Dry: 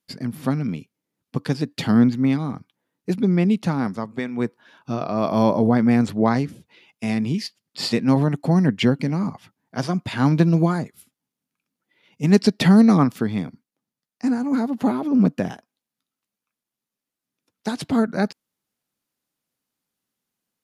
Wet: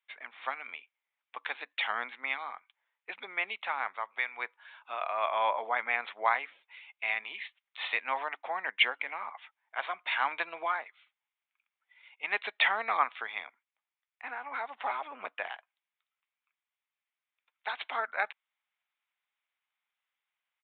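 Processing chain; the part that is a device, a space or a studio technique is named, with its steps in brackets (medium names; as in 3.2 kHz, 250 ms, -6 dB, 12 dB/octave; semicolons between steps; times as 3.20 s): musical greeting card (resampled via 8 kHz; high-pass 810 Hz 24 dB/octave; peaking EQ 2.2 kHz +7.5 dB 0.41 oct); trim -1.5 dB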